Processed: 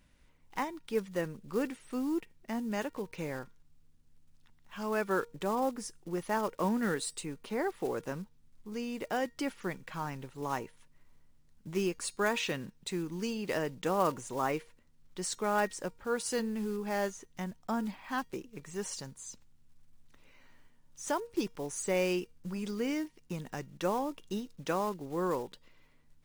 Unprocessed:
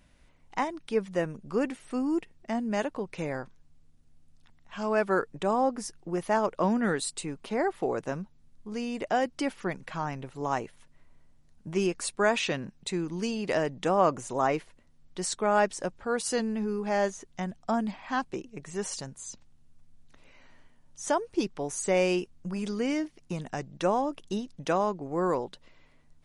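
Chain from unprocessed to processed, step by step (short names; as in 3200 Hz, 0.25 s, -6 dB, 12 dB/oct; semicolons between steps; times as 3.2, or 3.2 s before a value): block floating point 5-bit; bell 680 Hz -6 dB 0.33 oct; resonator 470 Hz, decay 0.31 s, harmonics all, mix 40%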